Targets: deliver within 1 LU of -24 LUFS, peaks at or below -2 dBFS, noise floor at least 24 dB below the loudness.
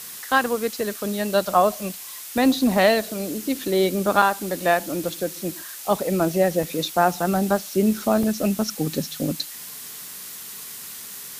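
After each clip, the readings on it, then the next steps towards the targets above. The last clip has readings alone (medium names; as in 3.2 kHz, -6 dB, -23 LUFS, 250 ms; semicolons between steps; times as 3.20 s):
dropouts 3; longest dropout 2.5 ms; noise floor -37 dBFS; noise floor target -47 dBFS; loudness -22.5 LUFS; peak level -2.5 dBFS; loudness target -24.0 LUFS
-> interpolate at 4.22/6.63/8.23 s, 2.5 ms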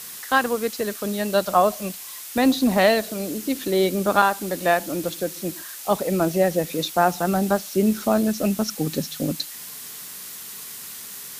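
dropouts 0; noise floor -37 dBFS; noise floor target -47 dBFS
-> noise reduction 10 dB, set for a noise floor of -37 dBFS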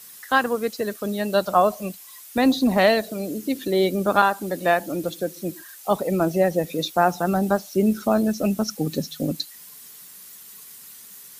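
noise floor -44 dBFS; noise floor target -47 dBFS
-> noise reduction 6 dB, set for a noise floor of -44 dBFS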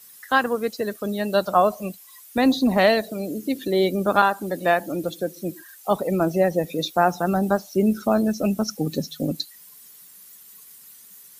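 noise floor -48 dBFS; loudness -22.5 LUFS; peak level -2.5 dBFS; loudness target -24.0 LUFS
-> trim -1.5 dB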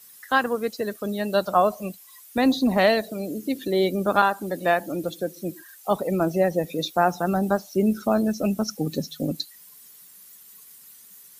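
loudness -24.0 LUFS; peak level -4.0 dBFS; noise floor -49 dBFS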